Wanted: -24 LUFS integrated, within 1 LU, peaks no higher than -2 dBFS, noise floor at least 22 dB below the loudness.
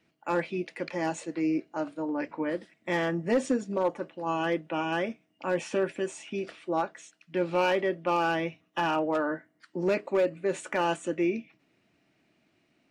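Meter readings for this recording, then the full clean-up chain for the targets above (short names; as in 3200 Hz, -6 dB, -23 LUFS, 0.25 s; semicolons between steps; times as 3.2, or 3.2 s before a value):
clipped 0.3%; flat tops at -18.5 dBFS; loudness -30.0 LUFS; peak -18.5 dBFS; loudness target -24.0 LUFS
-> clip repair -18.5 dBFS; gain +6 dB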